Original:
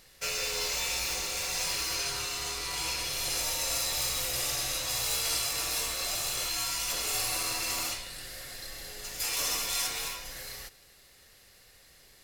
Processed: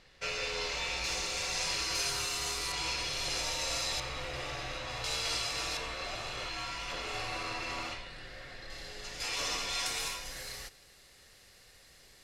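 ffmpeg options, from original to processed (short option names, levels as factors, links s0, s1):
-af "asetnsamples=n=441:p=0,asendcmd='1.04 lowpass f 6300;1.95 lowpass f 11000;2.72 lowpass f 5500;4 lowpass f 2500;5.04 lowpass f 4900;5.77 lowpass f 2800;8.7 lowpass f 4900;9.86 lowpass f 9800',lowpass=3800"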